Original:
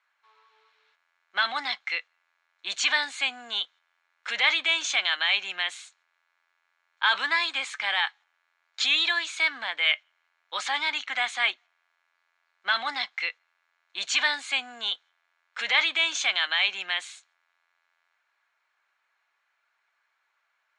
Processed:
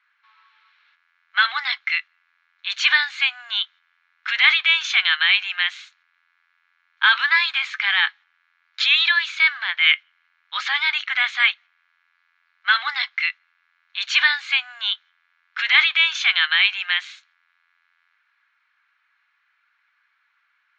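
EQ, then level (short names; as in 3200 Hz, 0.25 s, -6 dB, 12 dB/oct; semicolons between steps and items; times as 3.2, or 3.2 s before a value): HPF 830 Hz 24 dB/oct; air absorption 180 m; band shelf 2900 Hz +11 dB 2.8 oct; -1.0 dB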